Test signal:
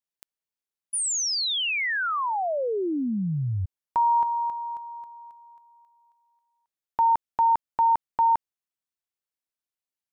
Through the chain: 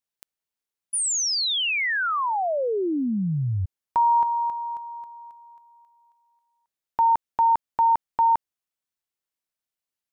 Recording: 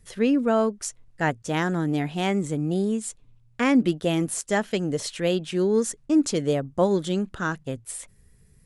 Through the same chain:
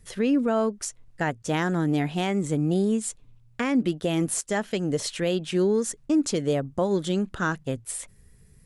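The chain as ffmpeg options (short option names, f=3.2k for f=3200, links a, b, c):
-af "alimiter=limit=-17dB:level=0:latency=1:release=245,volume=2dB"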